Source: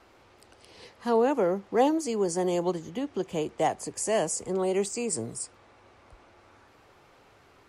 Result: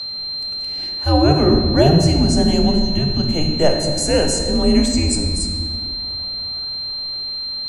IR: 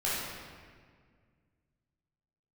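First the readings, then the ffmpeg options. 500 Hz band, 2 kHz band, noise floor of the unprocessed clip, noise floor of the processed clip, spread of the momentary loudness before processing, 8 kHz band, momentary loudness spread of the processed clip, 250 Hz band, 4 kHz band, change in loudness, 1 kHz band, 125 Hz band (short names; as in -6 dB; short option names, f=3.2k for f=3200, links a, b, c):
+7.5 dB, +9.5 dB, -59 dBFS, -26 dBFS, 9 LU, +8.5 dB, 9 LU, +14.0 dB, +26.0 dB, +10.5 dB, +5.5 dB, +22.5 dB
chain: -filter_complex "[0:a]aeval=exprs='val(0)+0.02*sin(2*PI*4300*n/s)':c=same,afreqshift=-150,asplit=2[a][b];[1:a]atrim=start_sample=2205,lowshelf=f=220:g=7.5[c];[b][c]afir=irnorm=-1:irlink=0,volume=-9.5dB[d];[a][d]amix=inputs=2:normalize=0,volume=6dB"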